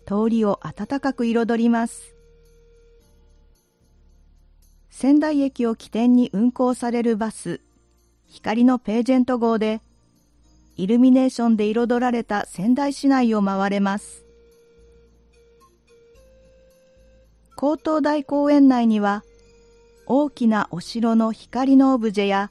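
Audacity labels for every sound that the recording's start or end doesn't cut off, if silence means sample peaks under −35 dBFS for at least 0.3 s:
4.960000	7.560000	sound
8.350000	9.780000	sound
10.780000	14.170000	sound
17.580000	19.200000	sound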